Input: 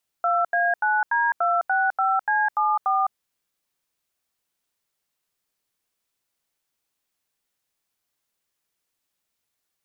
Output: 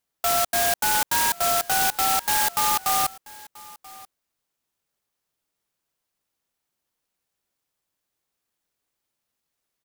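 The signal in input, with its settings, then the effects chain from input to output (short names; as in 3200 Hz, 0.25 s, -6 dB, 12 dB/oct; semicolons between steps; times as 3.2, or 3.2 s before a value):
DTMF "2A9D265C74", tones 0.208 s, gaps 83 ms, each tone -21 dBFS
echo 0.984 s -21.5 dB; clock jitter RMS 0.13 ms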